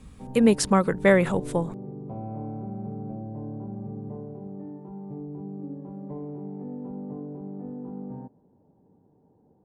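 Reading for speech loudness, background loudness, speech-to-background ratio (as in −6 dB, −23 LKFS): −22.0 LKFS, −37.5 LKFS, 15.5 dB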